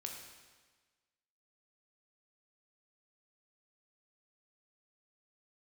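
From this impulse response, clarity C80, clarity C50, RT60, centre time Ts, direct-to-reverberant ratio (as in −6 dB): 5.5 dB, 3.5 dB, 1.4 s, 50 ms, 1.0 dB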